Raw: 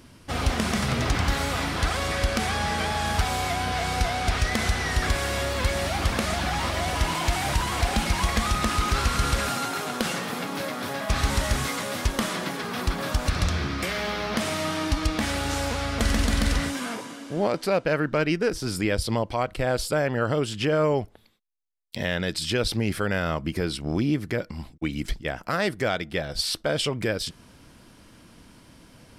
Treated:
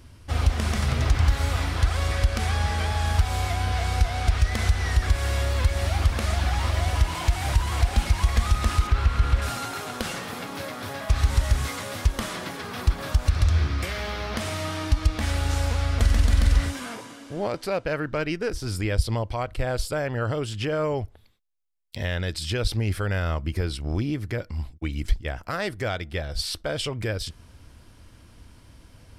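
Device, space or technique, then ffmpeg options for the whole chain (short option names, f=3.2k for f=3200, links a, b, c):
car stereo with a boomy subwoofer: -filter_complex "[0:a]asettb=1/sr,asplit=3[a][b][c];[a]atrim=end=8.874[d];[b]atrim=start=8.87:end=9.42,asetpts=PTS-STARTPTS,afade=t=in:d=0.004:c=qsin,afade=t=out:st=0.546:d=0.004:c=qsin,acrossover=split=3800[e][f];[f]acompressor=threshold=-46dB:ratio=4:attack=1:release=60[g];[e][g]amix=inputs=2:normalize=0[h];[c]atrim=start=9.416[i];[d][h]acrossfade=d=0.004:c1=hsin:c2=qsin[j];[j][i]acrossfade=d=0.004:c1=qsin:c2=hsin,lowshelf=f=120:t=q:w=1.5:g=9.5,alimiter=limit=-6.5dB:level=0:latency=1:release=157,volume=-3dB"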